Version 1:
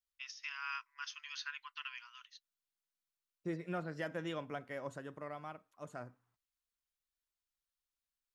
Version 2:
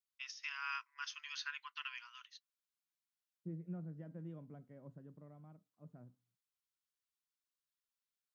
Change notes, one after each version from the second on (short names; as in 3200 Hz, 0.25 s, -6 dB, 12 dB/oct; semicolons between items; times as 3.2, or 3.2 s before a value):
second voice: add band-pass 170 Hz, Q 2.1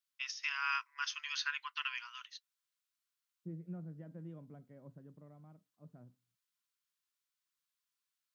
first voice +6.5 dB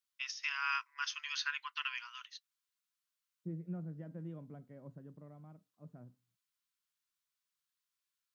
second voice +3.0 dB